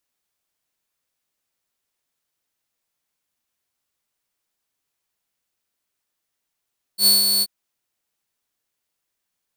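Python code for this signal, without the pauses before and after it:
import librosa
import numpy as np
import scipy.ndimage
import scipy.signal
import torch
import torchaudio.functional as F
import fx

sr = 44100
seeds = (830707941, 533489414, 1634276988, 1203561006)

y = fx.adsr_tone(sr, wave='saw', hz=4430.0, attack_ms=83.0, decay_ms=165.0, sustain_db=-5.5, held_s=0.44, release_ms=43.0, level_db=-8.5)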